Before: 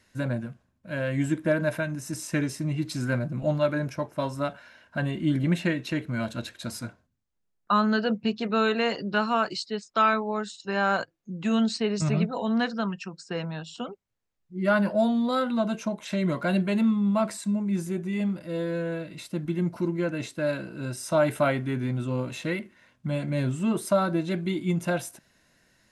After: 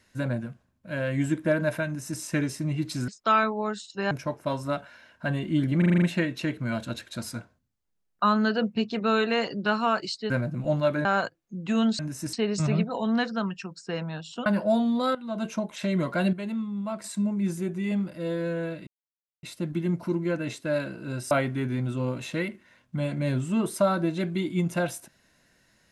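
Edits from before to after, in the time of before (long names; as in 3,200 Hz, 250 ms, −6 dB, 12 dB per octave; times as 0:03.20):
0:01.86–0:02.20: duplicate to 0:11.75
0:03.08–0:03.83: swap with 0:09.78–0:10.81
0:05.50: stutter 0.04 s, 7 plays
0:13.88–0:14.75: remove
0:15.44–0:15.74: fade in quadratic, from −14 dB
0:16.62–0:17.33: clip gain −8 dB
0:19.16: splice in silence 0.56 s
0:21.04–0:21.42: remove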